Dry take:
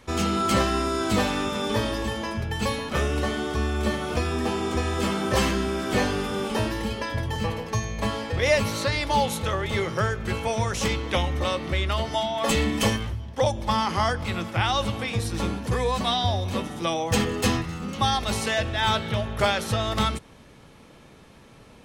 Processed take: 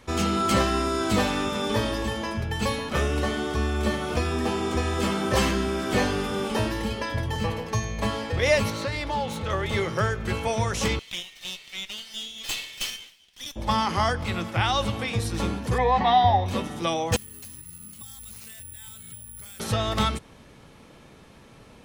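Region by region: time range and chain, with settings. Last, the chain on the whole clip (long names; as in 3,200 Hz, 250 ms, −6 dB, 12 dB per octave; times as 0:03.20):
0:08.70–0:09.50: phase distortion by the signal itself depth 0.057 ms + low-pass filter 4,000 Hz 6 dB per octave + downward compressor 2 to 1, threshold −27 dBFS
0:10.99–0:13.56: inverse Chebyshev high-pass filter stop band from 760 Hz, stop band 60 dB + windowed peak hold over 3 samples
0:15.78–0:16.46: high-frequency loss of the air 210 metres + notch filter 630 Hz, Q 7.8 + hollow resonant body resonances 810/1,900 Hz, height 16 dB, ringing for 20 ms
0:17.16–0:19.60: guitar amp tone stack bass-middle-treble 6-0-2 + downward compressor 10 to 1, threshold −44 dBFS + bad sample-rate conversion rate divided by 4×, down none, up zero stuff
whole clip: no processing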